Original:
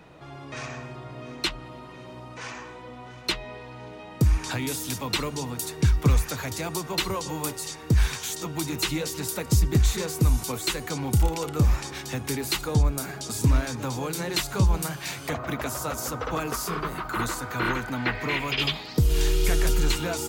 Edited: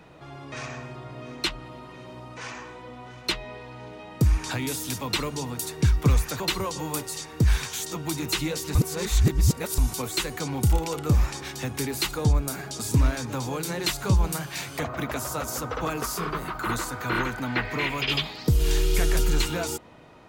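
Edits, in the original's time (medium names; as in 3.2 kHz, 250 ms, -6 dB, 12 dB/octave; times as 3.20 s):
6.40–6.90 s: delete
9.25–10.28 s: reverse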